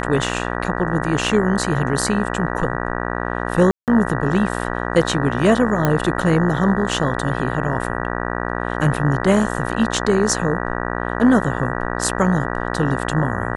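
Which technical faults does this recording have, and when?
buzz 60 Hz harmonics 32 -24 dBFS
3.71–3.88 s: dropout 168 ms
5.85 s: pop -4 dBFS

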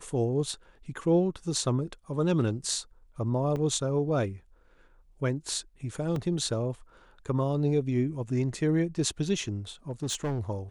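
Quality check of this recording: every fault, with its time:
3.56 s: dropout 4.9 ms
6.16 s: dropout 2.2 ms
9.90–10.40 s: clipped -26 dBFS

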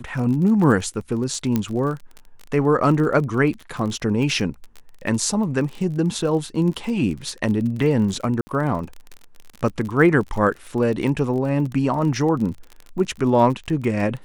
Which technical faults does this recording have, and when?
crackle 31 per s -28 dBFS
1.56 s: pop -8 dBFS
8.41–8.47 s: dropout 60 ms

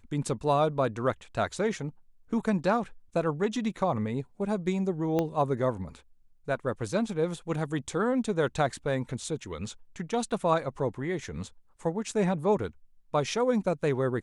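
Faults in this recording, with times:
5.19 s: pop -15 dBFS

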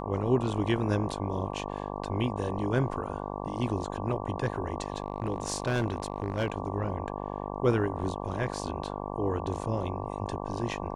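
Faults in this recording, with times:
buzz 50 Hz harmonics 23 -36 dBFS
4.82–6.54 s: clipped -23 dBFS

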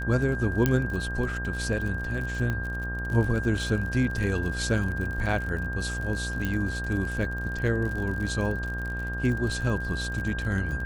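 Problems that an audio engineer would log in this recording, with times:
buzz 60 Hz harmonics 26 -33 dBFS
crackle 54 per s -33 dBFS
whine 1.6 kHz -33 dBFS
0.66 s: pop -9 dBFS
2.50 s: pop -18 dBFS
6.45 s: pop -16 dBFS

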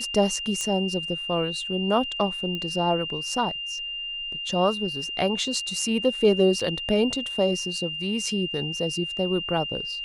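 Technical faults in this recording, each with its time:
whine 2.8 kHz -30 dBFS
0.61 s: pop -16 dBFS
2.55 s: pop -19 dBFS
6.60 s: dropout 4.1 ms

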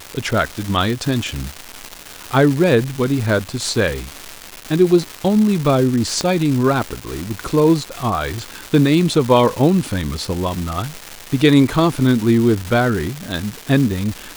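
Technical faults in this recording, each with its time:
crackle 560 per s -21 dBFS
6.21 s: pop -6 dBFS

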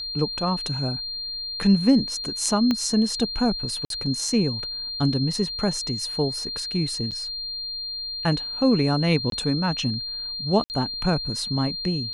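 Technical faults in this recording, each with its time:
whine 4.2 kHz -29 dBFS
2.71 s: pop -11 dBFS
3.85–3.90 s: dropout 52 ms
7.11–7.12 s: dropout 7 ms
9.30–9.32 s: dropout 22 ms
10.64–10.70 s: dropout 59 ms

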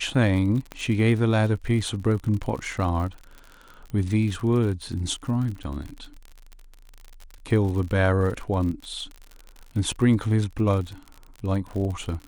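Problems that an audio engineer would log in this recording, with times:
crackle 51 per s -32 dBFS
0.72 s: pop -19 dBFS

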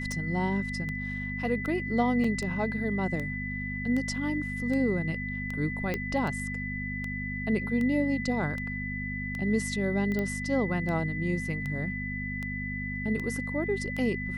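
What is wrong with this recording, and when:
hum 50 Hz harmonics 5 -36 dBFS
tick 78 rpm -23 dBFS
whine 2 kHz -35 dBFS
2.24 s: dropout 4.1 ms
5.94 s: pop -17 dBFS
10.19 s: pop -19 dBFS

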